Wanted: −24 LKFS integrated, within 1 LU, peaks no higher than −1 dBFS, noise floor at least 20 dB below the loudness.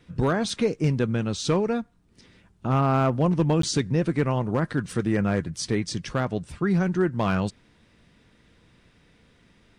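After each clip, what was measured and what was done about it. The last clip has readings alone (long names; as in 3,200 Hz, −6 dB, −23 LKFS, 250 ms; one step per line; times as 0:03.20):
share of clipped samples 0.2%; peaks flattened at −13.5 dBFS; number of dropouts 1; longest dropout 13 ms; integrated loudness −25.0 LKFS; sample peak −13.5 dBFS; target loudness −24.0 LKFS
→ clipped peaks rebuilt −13.5 dBFS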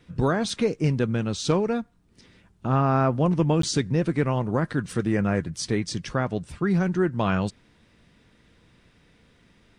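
share of clipped samples 0.0%; number of dropouts 1; longest dropout 13 ms
→ repair the gap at 0:03.62, 13 ms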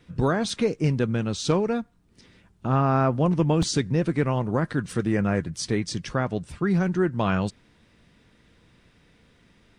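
number of dropouts 0; integrated loudness −25.0 LKFS; sample peak −8.0 dBFS; target loudness −24.0 LKFS
→ level +1 dB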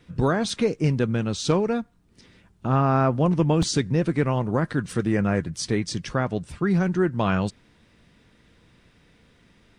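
integrated loudness −24.0 LKFS; sample peak −7.0 dBFS; background noise floor −59 dBFS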